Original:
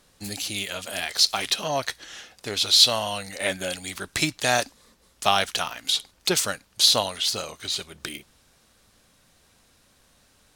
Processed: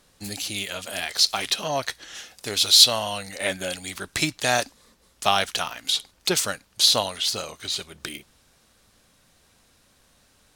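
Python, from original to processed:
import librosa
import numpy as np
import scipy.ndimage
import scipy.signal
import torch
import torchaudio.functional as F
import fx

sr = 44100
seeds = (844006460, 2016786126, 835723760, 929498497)

y = fx.high_shelf(x, sr, hz=fx.line((2.14, 4500.0), (2.83, 6900.0)), db=8.5, at=(2.14, 2.83), fade=0.02)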